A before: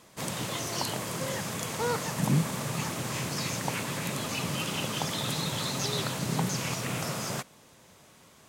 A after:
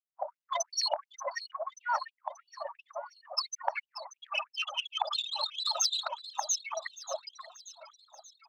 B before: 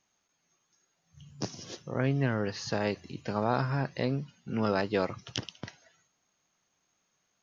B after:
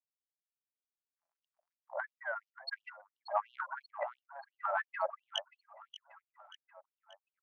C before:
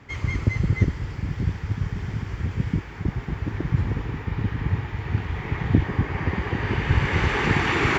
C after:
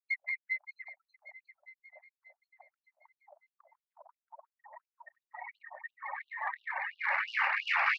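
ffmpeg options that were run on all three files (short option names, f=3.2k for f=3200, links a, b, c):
-filter_complex "[0:a]lowshelf=f=420:g=10.5,afftfilt=real='re*gte(hypot(re,im),0.0708)':imag='im*gte(hypot(re,im),0.0708)':win_size=1024:overlap=0.75,areverse,acompressor=threshold=-28dB:ratio=4,areverse,bass=f=250:g=-1,treble=f=4k:g=3,acrossover=split=120[a][b];[b]acompressor=threshold=-32dB:ratio=6[c];[a][c]amix=inputs=2:normalize=0,aeval=exprs='(tanh(15.8*val(0)+0.3)-tanh(0.3))/15.8':c=same,asplit=2[d][e];[e]acrusher=bits=2:mix=0:aa=0.5,volume=-8dB[f];[d][f]amix=inputs=2:normalize=0,aexciter=amount=2.9:drive=9.2:freq=4.8k,asplit=2[g][h];[h]highpass=f=720:p=1,volume=15dB,asoftclip=type=tanh:threshold=-13.5dB[i];[g][i]amix=inputs=2:normalize=0,lowpass=f=2.2k:p=1,volume=-6dB,aecho=1:1:583|1166|1749|2332|2915:0.2|0.106|0.056|0.0297|0.0157,afftfilt=real='re*gte(b*sr/1024,540*pow(2800/540,0.5+0.5*sin(2*PI*2.9*pts/sr)))':imag='im*gte(b*sr/1024,540*pow(2800/540,0.5+0.5*sin(2*PI*2.9*pts/sr)))':win_size=1024:overlap=0.75,volume=8dB"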